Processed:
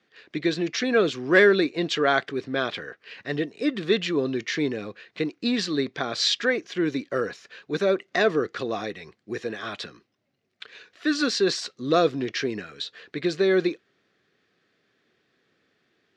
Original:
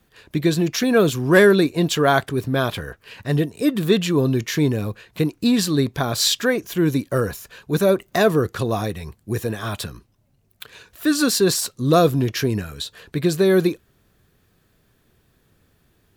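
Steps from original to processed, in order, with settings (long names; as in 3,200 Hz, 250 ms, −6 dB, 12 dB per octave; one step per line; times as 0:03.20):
loudspeaker in its box 300–5,400 Hz, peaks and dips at 620 Hz −3 dB, 940 Hz −8 dB, 2,000 Hz +5 dB
level −2.5 dB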